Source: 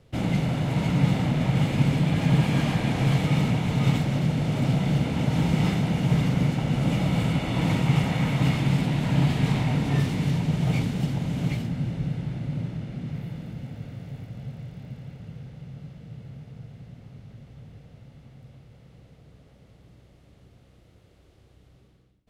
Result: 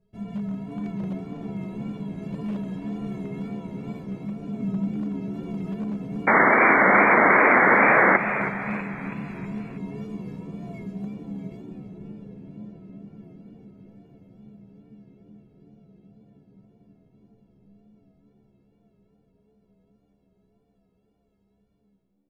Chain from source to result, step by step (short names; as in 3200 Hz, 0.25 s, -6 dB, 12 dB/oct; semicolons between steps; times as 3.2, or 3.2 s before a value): tilt shelf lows +8.5 dB; metallic resonator 200 Hz, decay 0.5 s, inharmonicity 0.03; wavefolder -25.5 dBFS; 4.46–4.91 bell 250 Hz +9.5 dB 0.77 oct; 6.27–8.17 painted sound noise 210–2300 Hz -18 dBFS; on a send: frequency-shifting echo 0.323 s, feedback 49%, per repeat +80 Hz, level -10.5 dB; on the sum: wow and flutter 65 cents; gain +1 dB